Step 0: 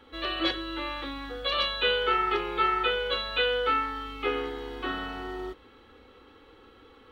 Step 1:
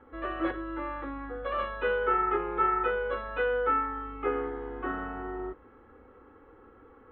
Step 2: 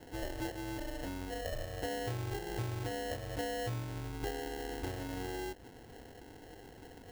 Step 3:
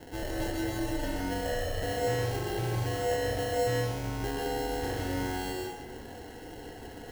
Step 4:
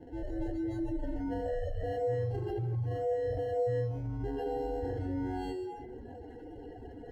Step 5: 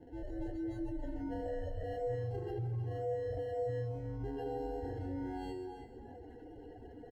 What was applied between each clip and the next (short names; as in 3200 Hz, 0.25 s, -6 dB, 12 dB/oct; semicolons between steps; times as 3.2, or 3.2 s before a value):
LPF 1700 Hz 24 dB/oct
compressor 4:1, threshold -40 dBFS, peak gain reduction 15 dB; sample-rate reducer 1200 Hz, jitter 0%; gain +2.5 dB
hard clip -36 dBFS, distortion -14 dB; plate-style reverb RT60 0.93 s, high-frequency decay 0.9×, pre-delay 0.115 s, DRR -1 dB; gain +5 dB
spectral contrast raised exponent 2; gain -2 dB
echo 0.314 s -11 dB; gain -5 dB